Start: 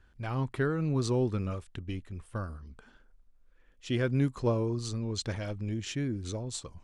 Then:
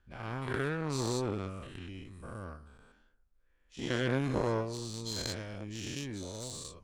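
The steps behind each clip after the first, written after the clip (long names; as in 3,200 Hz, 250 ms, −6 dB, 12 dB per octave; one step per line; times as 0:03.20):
every bin's largest magnitude spread in time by 240 ms
harmonic generator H 7 −22 dB, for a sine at −9 dBFS
level −6 dB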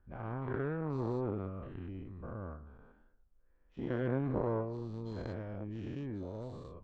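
low-pass filter 1,100 Hz 12 dB per octave
in parallel at 0 dB: downward compressor, threshold −43 dBFS, peak gain reduction 16.5 dB
on the sum: level −3.5 dB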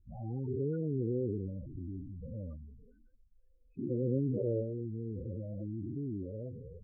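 spectral peaks only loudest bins 8
level +3 dB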